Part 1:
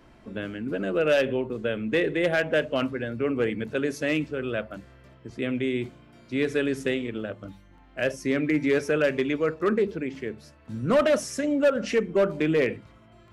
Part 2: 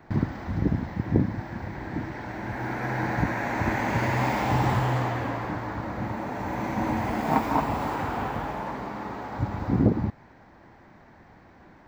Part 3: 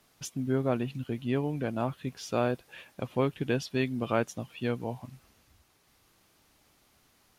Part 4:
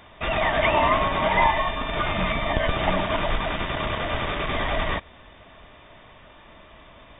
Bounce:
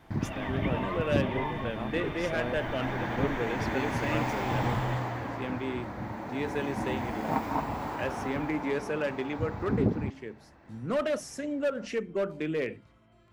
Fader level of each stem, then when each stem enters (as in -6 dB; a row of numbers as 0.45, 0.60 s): -8.0, -6.0, -7.5, -16.0 dB; 0.00, 0.00, 0.00, 0.00 s